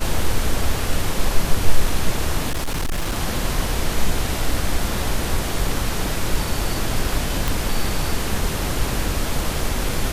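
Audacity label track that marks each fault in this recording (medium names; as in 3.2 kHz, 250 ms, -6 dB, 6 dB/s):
2.490000	3.160000	clipped -18.5 dBFS
7.480000	7.480000	pop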